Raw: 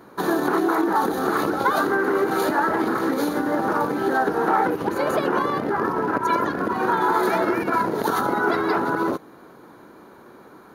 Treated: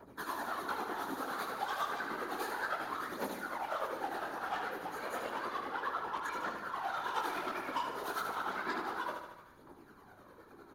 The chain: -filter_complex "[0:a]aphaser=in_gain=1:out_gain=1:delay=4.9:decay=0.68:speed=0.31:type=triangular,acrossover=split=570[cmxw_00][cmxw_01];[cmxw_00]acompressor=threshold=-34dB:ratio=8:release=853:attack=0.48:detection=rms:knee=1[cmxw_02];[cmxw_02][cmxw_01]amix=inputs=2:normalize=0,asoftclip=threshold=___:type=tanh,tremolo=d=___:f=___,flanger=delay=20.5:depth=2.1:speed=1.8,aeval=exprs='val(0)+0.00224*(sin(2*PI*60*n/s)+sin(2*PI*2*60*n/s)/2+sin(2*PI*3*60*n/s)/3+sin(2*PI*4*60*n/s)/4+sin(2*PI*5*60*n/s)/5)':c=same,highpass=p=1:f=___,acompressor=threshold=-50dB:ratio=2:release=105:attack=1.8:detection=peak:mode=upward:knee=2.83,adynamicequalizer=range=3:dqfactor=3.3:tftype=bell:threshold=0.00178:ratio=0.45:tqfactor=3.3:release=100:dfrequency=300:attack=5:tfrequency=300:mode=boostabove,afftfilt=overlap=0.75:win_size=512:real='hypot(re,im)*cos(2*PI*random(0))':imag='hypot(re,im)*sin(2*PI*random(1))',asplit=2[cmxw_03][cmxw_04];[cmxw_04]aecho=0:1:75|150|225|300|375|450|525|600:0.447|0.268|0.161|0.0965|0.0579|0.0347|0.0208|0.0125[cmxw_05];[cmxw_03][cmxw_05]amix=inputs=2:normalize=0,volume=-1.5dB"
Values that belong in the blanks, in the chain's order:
-20dB, 0.69, 9.9, 200